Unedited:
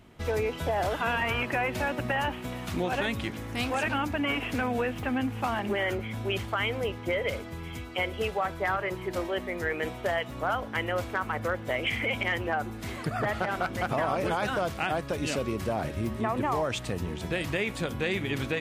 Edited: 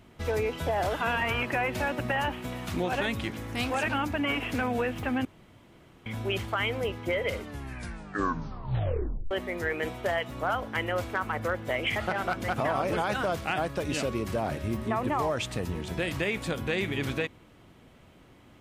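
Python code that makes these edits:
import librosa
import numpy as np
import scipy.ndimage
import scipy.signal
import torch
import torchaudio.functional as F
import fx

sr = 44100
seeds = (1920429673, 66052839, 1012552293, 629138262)

y = fx.edit(x, sr, fx.room_tone_fill(start_s=5.25, length_s=0.81),
    fx.tape_stop(start_s=7.27, length_s=2.04),
    fx.cut(start_s=11.96, length_s=1.33), tone=tone)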